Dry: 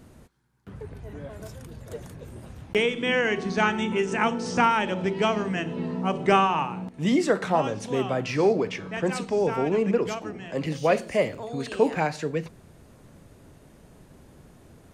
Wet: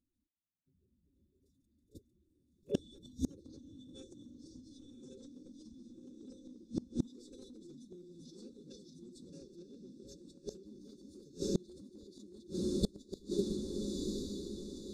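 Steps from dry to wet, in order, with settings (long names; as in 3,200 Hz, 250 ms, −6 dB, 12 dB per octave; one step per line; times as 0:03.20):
feedback delay that plays each chunk backwards 573 ms, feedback 57%, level −4 dB
time-frequency box erased 0:05.95–0:06.90, 500–1,500 Hz
noise gate −29 dBFS, range −45 dB
brick-wall band-stop 430–2,600 Hz
downward compressor 6 to 1, threshold −31 dBFS, peak gain reduction 14 dB
flanger 0.5 Hz, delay 4.6 ms, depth 1.6 ms, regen −62%
phase-vocoder pitch shift with formants kept +5 semitones
feedback delay with all-pass diffusion 1,013 ms, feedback 41%, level −11.5 dB
gate with flip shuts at −34 dBFS, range −31 dB
level +16 dB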